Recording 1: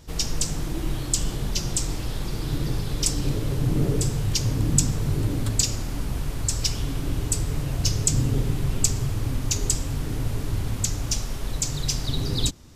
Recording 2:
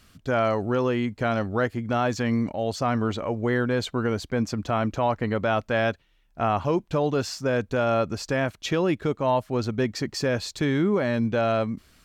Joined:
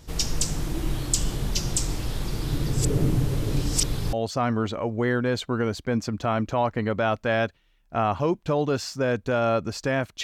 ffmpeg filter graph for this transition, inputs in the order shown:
ffmpeg -i cue0.wav -i cue1.wav -filter_complex "[0:a]apad=whole_dur=10.23,atrim=end=10.23,asplit=2[link_01][link_02];[link_01]atrim=end=2.732[link_03];[link_02]atrim=start=2.728:end=4.132,asetpts=PTS-STARTPTS,areverse[link_04];[1:a]atrim=start=2.578:end=8.68[link_05];[link_03][link_04]acrossfade=duration=0.004:curve1=hsin:curve2=hsin[link_06];[link_06][link_05]acrossfade=duration=0.004:curve1=hsin:curve2=hsin" out.wav

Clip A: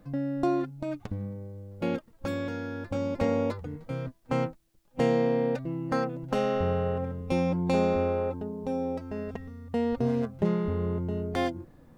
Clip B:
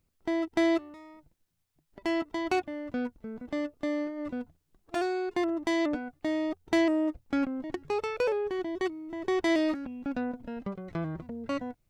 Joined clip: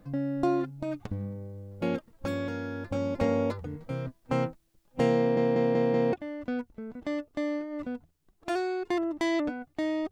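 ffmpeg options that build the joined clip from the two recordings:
ffmpeg -i cue0.wav -i cue1.wav -filter_complex "[0:a]apad=whole_dur=10.11,atrim=end=10.11,asplit=5[link_01][link_02][link_03][link_04][link_05];[link_01]atrim=end=5.372[link_06];[link_02]atrim=start=5.178:end=5.372[link_07];[link_03]atrim=start=5.178:end=5.372[link_08];[link_04]atrim=start=5.178:end=5.372[link_09];[link_05]atrim=start=5.178:end=5.372[link_10];[1:a]atrim=start=2.588:end=6.57[link_11];[link_06][link_07]acrossfade=duration=0.004:curve1=hsin:curve2=hsin[link_12];[link_12][link_08]acrossfade=duration=0.004:curve1=hsin:curve2=hsin[link_13];[link_13][link_09]acrossfade=duration=0.004:curve1=hsin:curve2=hsin[link_14];[link_14][link_10]acrossfade=duration=0.004:curve1=hsin:curve2=hsin[link_15];[link_15][link_11]acrossfade=duration=0.004:curve1=hsin:curve2=hsin" out.wav

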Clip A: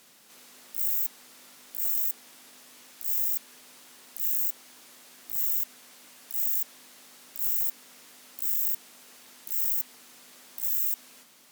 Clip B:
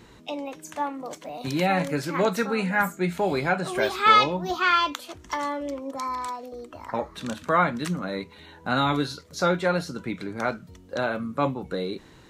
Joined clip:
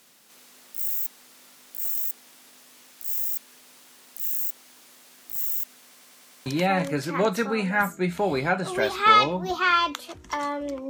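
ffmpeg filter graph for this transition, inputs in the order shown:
ffmpeg -i cue0.wav -i cue1.wav -filter_complex "[0:a]apad=whole_dur=10.89,atrim=end=10.89,asplit=6[link_01][link_02][link_03][link_04][link_05][link_06];[link_01]atrim=end=5.962[link_07];[link_02]atrim=start=5.858:end=5.962[link_08];[link_03]atrim=start=5.858:end=5.962[link_09];[link_04]atrim=start=5.858:end=5.962[link_10];[link_05]atrim=start=5.858:end=5.962[link_11];[link_06]atrim=start=5.858:end=5.962[link_12];[1:a]atrim=start=1.458:end=5.89[link_13];[link_07][link_08]acrossfade=duration=0.004:curve1=hsin:curve2=hsin[link_14];[link_14][link_09]acrossfade=duration=0.004:curve1=hsin:curve2=hsin[link_15];[link_15][link_10]acrossfade=duration=0.004:curve1=hsin:curve2=hsin[link_16];[link_16][link_11]acrossfade=duration=0.004:curve1=hsin:curve2=hsin[link_17];[link_17][link_12]acrossfade=duration=0.004:curve1=hsin:curve2=hsin[link_18];[link_18][link_13]acrossfade=duration=0.004:curve1=hsin:curve2=hsin" out.wav

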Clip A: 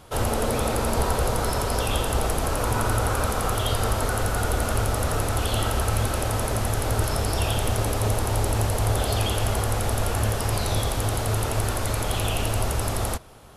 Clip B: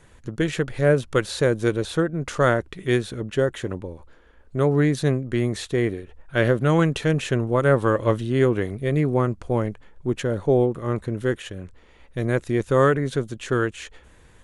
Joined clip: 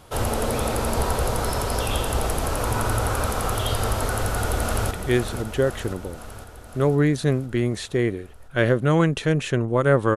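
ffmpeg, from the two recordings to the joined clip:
ffmpeg -i cue0.wav -i cue1.wav -filter_complex "[0:a]apad=whole_dur=10.16,atrim=end=10.16,atrim=end=4.912[link_01];[1:a]atrim=start=2.698:end=7.95[link_02];[link_01][link_02]acrossfade=duration=0.004:curve1=hsin:curve2=hsin,asplit=2[link_03][link_04];[link_04]afade=type=in:start_time=4.13:duration=0.01,afade=type=out:start_time=4.91:duration=0.01,aecho=0:1:510|1020|1530|2040|2550|3060|3570|4080|4590:0.398107|0.25877|0.1682|0.10933|0.0710646|0.046192|0.0300248|0.0195161|0.0126855[link_05];[link_03][link_05]amix=inputs=2:normalize=0" out.wav

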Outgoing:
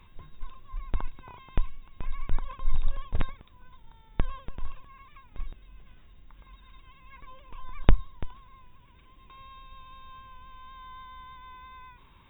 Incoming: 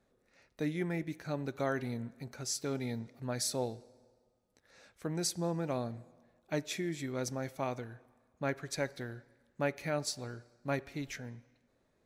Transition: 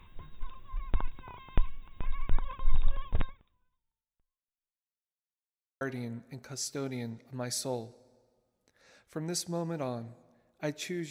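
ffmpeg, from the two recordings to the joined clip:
ffmpeg -i cue0.wav -i cue1.wav -filter_complex "[0:a]apad=whole_dur=11.1,atrim=end=11.1,asplit=2[link_01][link_02];[link_01]atrim=end=5.09,asetpts=PTS-STARTPTS,afade=type=out:start_time=3.15:duration=1.94:curve=exp[link_03];[link_02]atrim=start=5.09:end=5.81,asetpts=PTS-STARTPTS,volume=0[link_04];[1:a]atrim=start=1.7:end=6.99,asetpts=PTS-STARTPTS,afade=type=in:duration=0.004:curve=hsin[link_05];[link_03][link_04][link_05]concat=n=3:v=0:a=1" out.wav

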